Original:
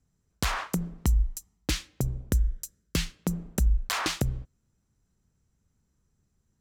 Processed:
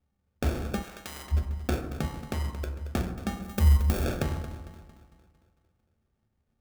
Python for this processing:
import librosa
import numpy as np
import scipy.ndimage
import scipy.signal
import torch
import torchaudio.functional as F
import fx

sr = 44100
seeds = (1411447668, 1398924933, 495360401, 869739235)

p1 = fx.band_invert(x, sr, width_hz=2000)
p2 = fx.quant_companded(p1, sr, bits=4)
p3 = p1 + F.gain(torch.from_numpy(p2), -10.5).numpy()
p4 = fx.peak_eq(p3, sr, hz=5500.0, db=7.0, octaves=0.58)
p5 = p4 + fx.echo_thinned(p4, sr, ms=226, feedback_pct=54, hz=690.0, wet_db=-13.0, dry=0)
p6 = fx.sample_hold(p5, sr, seeds[0], rate_hz=1000.0, jitter_pct=0)
p7 = fx.highpass(p6, sr, hz=fx.line((2.05, 300.0), (2.62, 82.0)), slope=12, at=(2.05, 2.62), fade=0.02)
p8 = fx.high_shelf(p7, sr, hz=9500.0, db=12.0, at=(3.42, 4.04))
p9 = fx.rev_fdn(p8, sr, rt60_s=0.99, lf_ratio=1.45, hf_ratio=0.5, size_ms=80.0, drr_db=4.0)
p10 = fx.spectral_comp(p9, sr, ratio=4.0, at=(0.82, 1.31), fade=0.02)
y = F.gain(torch.from_numpy(p10), -6.5).numpy()